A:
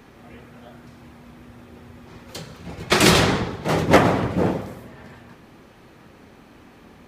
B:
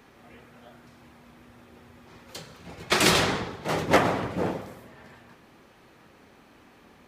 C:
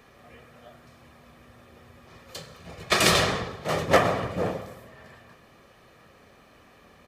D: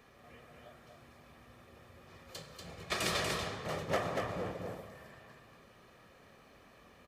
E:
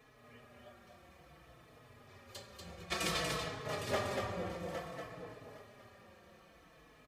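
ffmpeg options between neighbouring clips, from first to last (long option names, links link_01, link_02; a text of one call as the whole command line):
ffmpeg -i in.wav -af "lowshelf=frequency=330:gain=-6.5,volume=-4dB" out.wav
ffmpeg -i in.wav -af "aecho=1:1:1.7:0.41" out.wav
ffmpeg -i in.wav -af "acompressor=threshold=-38dB:ratio=1.5,aecho=1:1:239:0.631,volume=-6.5dB" out.wav
ffmpeg -i in.wav -filter_complex "[0:a]aecho=1:1:811|1622|2433:0.355|0.0639|0.0115,asplit=2[link_01][link_02];[link_02]adelay=4.2,afreqshift=-0.57[link_03];[link_01][link_03]amix=inputs=2:normalize=1,volume=1dB" out.wav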